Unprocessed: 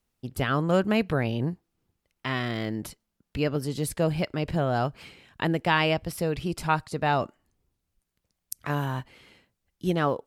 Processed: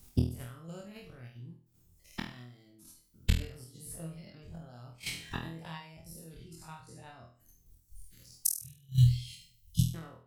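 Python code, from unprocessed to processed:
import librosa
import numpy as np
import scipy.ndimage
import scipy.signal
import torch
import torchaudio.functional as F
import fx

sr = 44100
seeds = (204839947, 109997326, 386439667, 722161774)

p1 = fx.spec_dilate(x, sr, span_ms=120)
p2 = fx.ellip_bandstop(p1, sr, low_hz=140.0, high_hz=3100.0, order=3, stop_db=50, at=(8.59, 9.94))
p3 = fx.dereverb_blind(p2, sr, rt60_s=0.92)
p4 = fx.low_shelf(p3, sr, hz=250.0, db=4.0)
p5 = fx.gate_flip(p4, sr, shuts_db=-25.0, range_db=-34)
p6 = fx.level_steps(p5, sr, step_db=9)
p7 = fx.bass_treble(p6, sr, bass_db=9, treble_db=13)
p8 = p7 + fx.room_flutter(p7, sr, wall_m=4.2, rt60_s=0.43, dry=0)
y = F.gain(torch.from_numpy(p8), 6.0).numpy()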